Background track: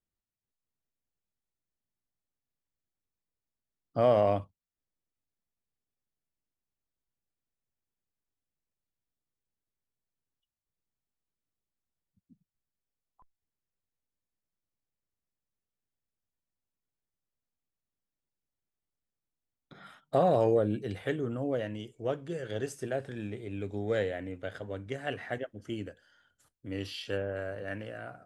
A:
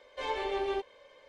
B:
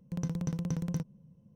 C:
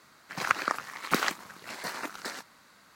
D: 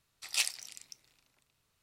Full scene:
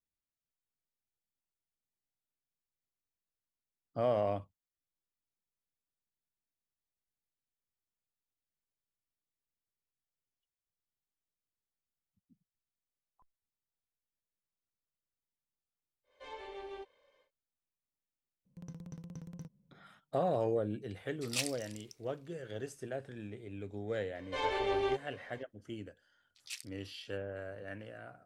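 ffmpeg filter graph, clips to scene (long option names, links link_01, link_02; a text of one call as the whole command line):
ffmpeg -i bed.wav -i cue0.wav -i cue1.wav -i cue2.wav -i cue3.wav -filter_complex "[1:a]asplit=2[link_01][link_02];[4:a]asplit=2[link_03][link_04];[0:a]volume=-7dB[link_05];[link_04]afwtdn=0.00708[link_06];[link_01]atrim=end=1.28,asetpts=PTS-STARTPTS,volume=-13.5dB,afade=type=in:duration=0.1,afade=type=out:start_time=1.18:duration=0.1,adelay=16030[link_07];[2:a]atrim=end=1.55,asetpts=PTS-STARTPTS,volume=-14dB,afade=type=in:duration=0.004:curve=hsin,afade=type=out:start_time=1.546:duration=0.004:curve=hsin,adelay=18450[link_08];[link_03]atrim=end=1.82,asetpts=PTS-STARTPTS,volume=-5dB,afade=type=in:duration=0.004:curve=hsin,afade=type=out:start_time=1.816:duration=0.004:curve=hsin,adelay=20990[link_09];[link_02]atrim=end=1.28,asetpts=PTS-STARTPTS,afade=type=in:duration=0.004:curve=hsin,afade=type=out:start_time=1.276:duration=0.004:curve=hsin,adelay=24150[link_10];[link_06]atrim=end=1.82,asetpts=PTS-STARTPTS,volume=-14dB,afade=type=in:duration=0.004:curve=hsin,afade=type=out:start_time=1.816:duration=0.004:curve=hsin,adelay=26130[link_11];[link_05][link_07][link_08][link_09][link_10][link_11]amix=inputs=6:normalize=0" out.wav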